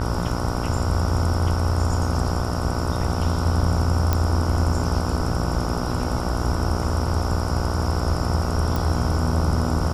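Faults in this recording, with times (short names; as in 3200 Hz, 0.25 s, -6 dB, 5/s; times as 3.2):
buzz 60 Hz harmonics 25 -27 dBFS
4.13 pop -7 dBFS
8.76 pop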